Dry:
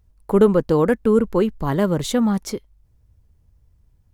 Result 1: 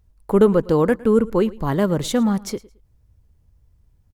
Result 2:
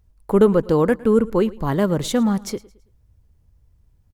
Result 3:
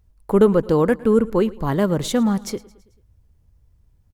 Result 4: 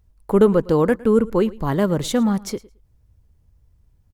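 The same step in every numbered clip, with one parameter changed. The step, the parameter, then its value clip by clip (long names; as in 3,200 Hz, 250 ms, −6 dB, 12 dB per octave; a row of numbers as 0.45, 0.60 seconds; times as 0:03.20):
repeating echo, feedback: 23, 36, 54, 15%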